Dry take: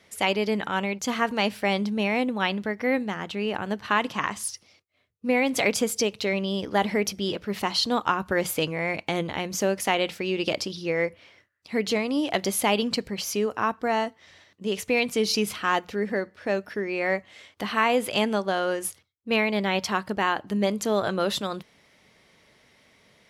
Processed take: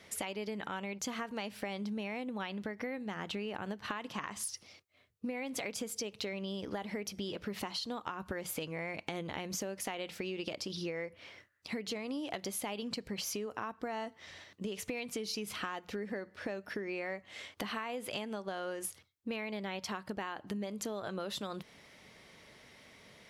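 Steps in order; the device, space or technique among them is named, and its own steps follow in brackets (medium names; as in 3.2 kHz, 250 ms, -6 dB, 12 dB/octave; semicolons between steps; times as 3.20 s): serial compression, peaks first (compression, threshold -32 dBFS, peak gain reduction 14 dB; compression 2.5:1, threshold -39 dBFS, peak gain reduction 7.5 dB); trim +1.5 dB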